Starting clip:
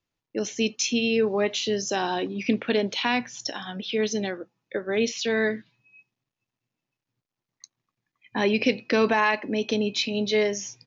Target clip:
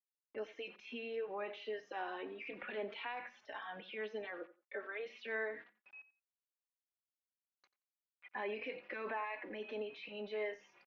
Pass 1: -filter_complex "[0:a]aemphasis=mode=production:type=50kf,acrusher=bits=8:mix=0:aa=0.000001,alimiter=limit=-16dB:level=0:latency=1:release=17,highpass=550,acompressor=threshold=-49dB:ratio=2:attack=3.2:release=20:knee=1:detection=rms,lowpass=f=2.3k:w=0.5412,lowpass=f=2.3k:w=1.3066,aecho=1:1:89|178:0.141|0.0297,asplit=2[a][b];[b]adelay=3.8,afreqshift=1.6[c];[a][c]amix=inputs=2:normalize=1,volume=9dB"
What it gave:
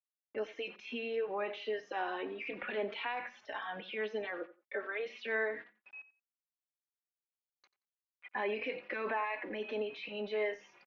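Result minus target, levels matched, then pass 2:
compressor: peak gain reduction -5.5 dB
-filter_complex "[0:a]aemphasis=mode=production:type=50kf,acrusher=bits=8:mix=0:aa=0.000001,alimiter=limit=-16dB:level=0:latency=1:release=17,highpass=550,acompressor=threshold=-60dB:ratio=2:attack=3.2:release=20:knee=1:detection=rms,lowpass=f=2.3k:w=0.5412,lowpass=f=2.3k:w=1.3066,aecho=1:1:89|178:0.141|0.0297,asplit=2[a][b];[b]adelay=3.8,afreqshift=1.6[c];[a][c]amix=inputs=2:normalize=1,volume=9dB"

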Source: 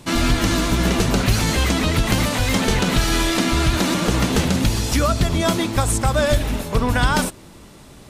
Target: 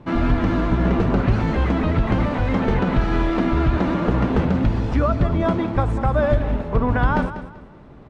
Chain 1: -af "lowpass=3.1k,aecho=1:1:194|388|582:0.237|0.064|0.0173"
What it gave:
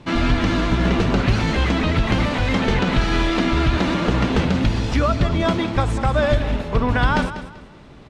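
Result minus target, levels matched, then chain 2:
4000 Hz band +11.0 dB
-af "lowpass=1.4k,aecho=1:1:194|388|582:0.237|0.064|0.0173"

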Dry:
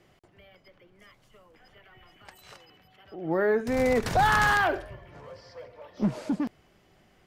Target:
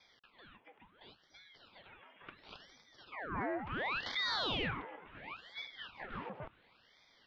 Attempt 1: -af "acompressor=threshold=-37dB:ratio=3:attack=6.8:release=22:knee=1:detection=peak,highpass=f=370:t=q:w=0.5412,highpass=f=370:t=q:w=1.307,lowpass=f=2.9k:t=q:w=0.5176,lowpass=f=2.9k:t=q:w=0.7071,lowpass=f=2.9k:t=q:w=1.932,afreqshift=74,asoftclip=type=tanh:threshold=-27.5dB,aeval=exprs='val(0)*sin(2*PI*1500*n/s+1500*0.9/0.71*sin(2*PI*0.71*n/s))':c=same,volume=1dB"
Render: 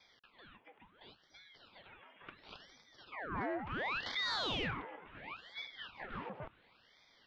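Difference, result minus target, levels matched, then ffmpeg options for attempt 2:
soft clip: distortion +10 dB
-af "acompressor=threshold=-37dB:ratio=3:attack=6.8:release=22:knee=1:detection=peak,highpass=f=370:t=q:w=0.5412,highpass=f=370:t=q:w=1.307,lowpass=f=2.9k:t=q:w=0.5176,lowpass=f=2.9k:t=q:w=0.7071,lowpass=f=2.9k:t=q:w=1.932,afreqshift=74,asoftclip=type=tanh:threshold=-21.5dB,aeval=exprs='val(0)*sin(2*PI*1500*n/s+1500*0.9/0.71*sin(2*PI*0.71*n/s))':c=same,volume=1dB"

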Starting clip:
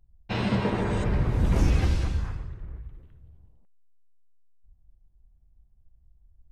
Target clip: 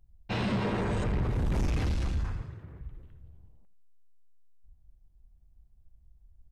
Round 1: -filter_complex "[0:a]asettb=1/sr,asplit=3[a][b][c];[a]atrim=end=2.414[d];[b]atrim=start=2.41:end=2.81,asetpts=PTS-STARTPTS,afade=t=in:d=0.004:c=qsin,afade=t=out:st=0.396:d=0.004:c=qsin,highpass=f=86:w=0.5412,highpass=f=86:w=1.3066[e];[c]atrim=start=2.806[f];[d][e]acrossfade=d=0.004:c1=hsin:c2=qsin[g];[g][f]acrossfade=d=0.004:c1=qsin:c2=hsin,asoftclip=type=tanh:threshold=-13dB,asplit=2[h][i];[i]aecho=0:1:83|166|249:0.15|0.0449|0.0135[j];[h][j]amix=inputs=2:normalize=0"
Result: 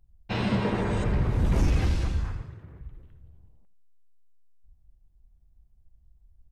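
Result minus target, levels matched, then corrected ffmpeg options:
soft clip: distortion -13 dB
-filter_complex "[0:a]asettb=1/sr,asplit=3[a][b][c];[a]atrim=end=2.414[d];[b]atrim=start=2.41:end=2.81,asetpts=PTS-STARTPTS,afade=t=in:d=0.004:c=qsin,afade=t=out:st=0.396:d=0.004:c=qsin,highpass=f=86:w=0.5412,highpass=f=86:w=1.3066[e];[c]atrim=start=2.806[f];[d][e]acrossfade=d=0.004:c1=hsin:c2=qsin[g];[g][f]acrossfade=d=0.004:c1=qsin:c2=hsin,asoftclip=type=tanh:threshold=-24.5dB,asplit=2[h][i];[i]aecho=0:1:83|166|249:0.15|0.0449|0.0135[j];[h][j]amix=inputs=2:normalize=0"

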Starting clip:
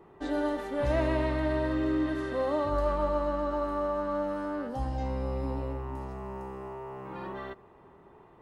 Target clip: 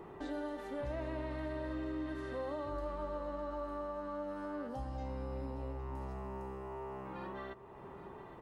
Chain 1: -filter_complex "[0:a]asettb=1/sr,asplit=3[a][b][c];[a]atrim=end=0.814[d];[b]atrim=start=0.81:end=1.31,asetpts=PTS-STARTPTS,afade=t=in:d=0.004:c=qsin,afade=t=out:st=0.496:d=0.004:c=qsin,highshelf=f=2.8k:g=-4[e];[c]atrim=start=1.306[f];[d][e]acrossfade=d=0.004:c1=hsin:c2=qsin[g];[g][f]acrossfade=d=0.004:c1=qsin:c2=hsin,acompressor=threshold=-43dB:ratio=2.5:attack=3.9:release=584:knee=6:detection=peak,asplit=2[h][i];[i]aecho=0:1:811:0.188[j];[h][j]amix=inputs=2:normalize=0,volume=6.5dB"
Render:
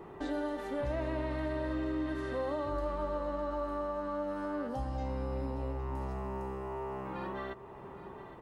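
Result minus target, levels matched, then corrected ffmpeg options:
compressor: peak gain reduction -5 dB
-filter_complex "[0:a]asettb=1/sr,asplit=3[a][b][c];[a]atrim=end=0.814[d];[b]atrim=start=0.81:end=1.31,asetpts=PTS-STARTPTS,afade=t=in:d=0.004:c=qsin,afade=t=out:st=0.496:d=0.004:c=qsin,highshelf=f=2.8k:g=-4[e];[c]atrim=start=1.306[f];[d][e]acrossfade=d=0.004:c1=hsin:c2=qsin[g];[g][f]acrossfade=d=0.004:c1=qsin:c2=hsin,acompressor=threshold=-51.5dB:ratio=2.5:attack=3.9:release=584:knee=6:detection=peak,asplit=2[h][i];[i]aecho=0:1:811:0.188[j];[h][j]amix=inputs=2:normalize=0,volume=6.5dB"

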